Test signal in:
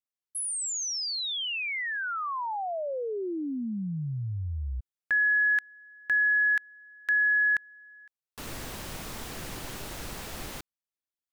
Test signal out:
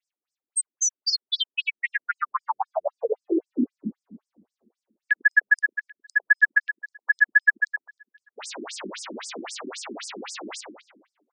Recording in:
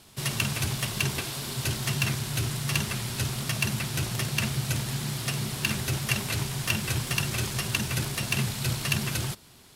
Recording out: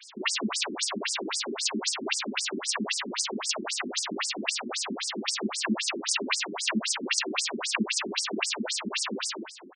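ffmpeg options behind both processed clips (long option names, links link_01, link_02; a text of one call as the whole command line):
ffmpeg -i in.wav -filter_complex "[0:a]asplit=2[link_01][link_02];[link_02]acompressor=threshold=-33dB:ratio=6:attack=0.49:release=33:knee=6:detection=rms,volume=-2.5dB[link_03];[link_01][link_03]amix=inputs=2:normalize=0,asplit=2[link_04][link_05];[link_05]adelay=103,lowpass=frequency=4000:poles=1,volume=-5dB,asplit=2[link_06][link_07];[link_07]adelay=103,lowpass=frequency=4000:poles=1,volume=0.55,asplit=2[link_08][link_09];[link_09]adelay=103,lowpass=frequency=4000:poles=1,volume=0.55,asplit=2[link_10][link_11];[link_11]adelay=103,lowpass=frequency=4000:poles=1,volume=0.55,asplit=2[link_12][link_13];[link_13]adelay=103,lowpass=frequency=4000:poles=1,volume=0.55,asplit=2[link_14][link_15];[link_15]adelay=103,lowpass=frequency=4000:poles=1,volume=0.55,asplit=2[link_16][link_17];[link_17]adelay=103,lowpass=frequency=4000:poles=1,volume=0.55[link_18];[link_04][link_06][link_08][link_10][link_12][link_14][link_16][link_18]amix=inputs=8:normalize=0,afftfilt=real='re*between(b*sr/1024,260*pow(6900/260,0.5+0.5*sin(2*PI*3.8*pts/sr))/1.41,260*pow(6900/260,0.5+0.5*sin(2*PI*3.8*pts/sr))*1.41)':imag='im*between(b*sr/1024,260*pow(6900/260,0.5+0.5*sin(2*PI*3.8*pts/sr))/1.41,260*pow(6900/260,0.5+0.5*sin(2*PI*3.8*pts/sr))*1.41)':win_size=1024:overlap=0.75,volume=7.5dB" out.wav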